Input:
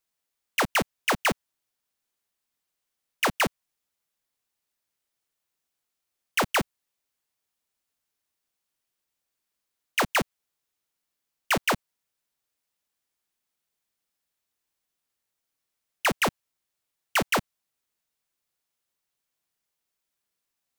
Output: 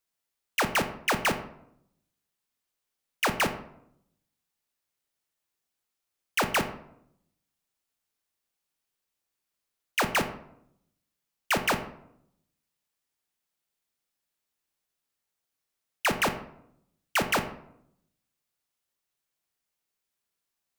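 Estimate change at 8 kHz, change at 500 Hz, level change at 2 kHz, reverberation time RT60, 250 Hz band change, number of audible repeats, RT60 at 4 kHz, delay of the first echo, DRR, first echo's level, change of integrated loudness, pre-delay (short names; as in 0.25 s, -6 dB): -1.5 dB, -1.0 dB, -1.5 dB, 0.75 s, -1.0 dB, none, 0.40 s, none, 7.5 dB, none, -1.5 dB, 16 ms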